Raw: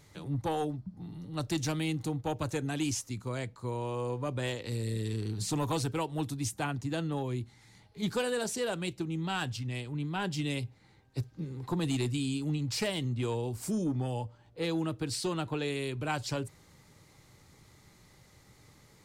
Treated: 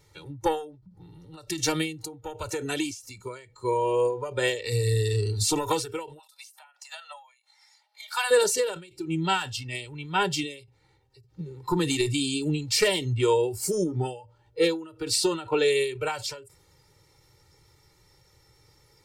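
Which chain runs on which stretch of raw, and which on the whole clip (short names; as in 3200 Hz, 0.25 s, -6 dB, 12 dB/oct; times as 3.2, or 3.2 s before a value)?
6.19–8.31 steep high-pass 600 Hz 72 dB/oct + dynamic EQ 7000 Hz, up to -7 dB, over -56 dBFS, Q 2.1
whole clip: spectral noise reduction 13 dB; comb 2.2 ms, depth 96%; ending taper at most 110 dB/s; gain +8.5 dB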